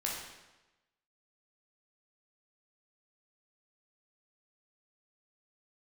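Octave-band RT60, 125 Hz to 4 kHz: 1.1 s, 1.1 s, 1.1 s, 1.0 s, 1.0 s, 0.95 s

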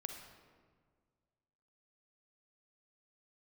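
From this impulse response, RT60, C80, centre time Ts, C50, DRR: 1.8 s, 6.5 dB, 41 ms, 4.5 dB, 4.0 dB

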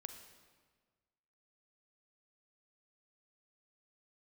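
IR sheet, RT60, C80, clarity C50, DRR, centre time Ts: 1.5 s, 9.0 dB, 7.5 dB, 7.0 dB, 24 ms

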